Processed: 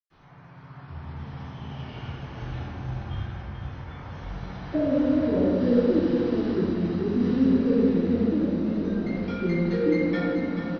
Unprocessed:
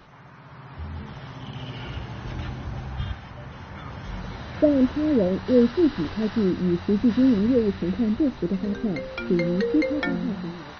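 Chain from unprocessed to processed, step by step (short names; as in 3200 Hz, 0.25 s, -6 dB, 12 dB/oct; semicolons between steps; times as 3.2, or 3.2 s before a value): echo 0.438 s -8 dB; reverb RT60 1.9 s, pre-delay 0.101 s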